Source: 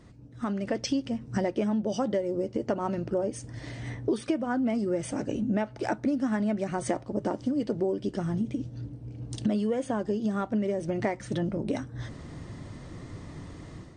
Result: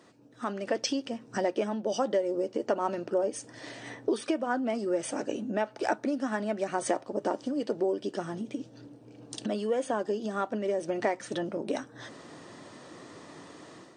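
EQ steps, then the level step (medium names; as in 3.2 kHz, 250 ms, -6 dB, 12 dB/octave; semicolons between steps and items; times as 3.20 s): high-pass 370 Hz 12 dB/octave; band-stop 2.1 kHz, Q 13; +2.5 dB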